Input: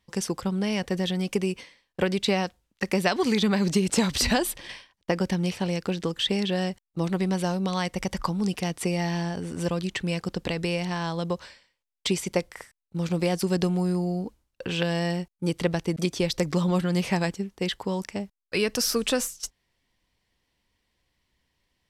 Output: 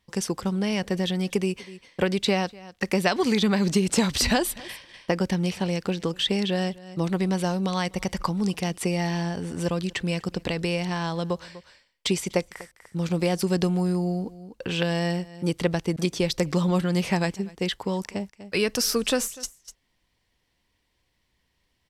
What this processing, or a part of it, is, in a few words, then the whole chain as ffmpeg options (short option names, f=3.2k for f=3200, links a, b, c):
ducked delay: -filter_complex "[0:a]asplit=3[a][b][c];[b]adelay=246,volume=-8dB[d];[c]apad=whole_len=976550[e];[d][e]sidechaincompress=threshold=-42dB:ratio=10:attack=6.5:release=292[f];[a][f]amix=inputs=2:normalize=0,volume=1dB"